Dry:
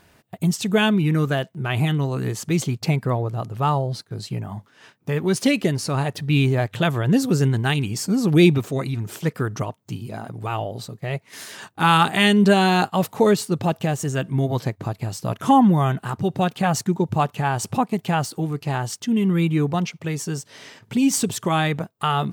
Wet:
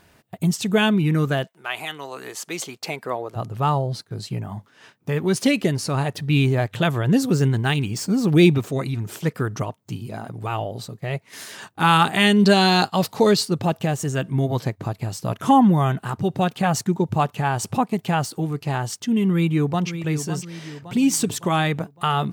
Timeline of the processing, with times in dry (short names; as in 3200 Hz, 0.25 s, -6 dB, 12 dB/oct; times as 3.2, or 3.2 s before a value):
1.47–3.35 HPF 810 Hz -> 370 Hz
7.3–8.62 median filter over 3 samples
12.39–13.49 bell 4600 Hz +11 dB 0.64 oct
19.3–19.88 echo throw 0.56 s, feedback 50%, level -10.5 dB